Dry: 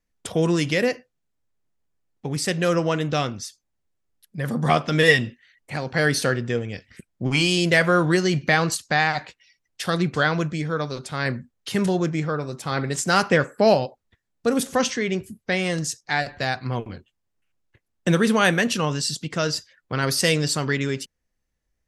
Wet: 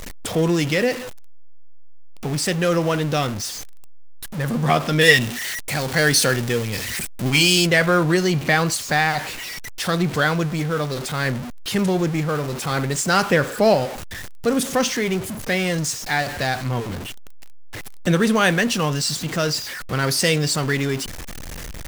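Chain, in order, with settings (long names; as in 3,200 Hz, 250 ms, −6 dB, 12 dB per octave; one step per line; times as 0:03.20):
converter with a step at zero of −26 dBFS
0:05.01–0:07.67: high-shelf EQ 2,800 Hz +8 dB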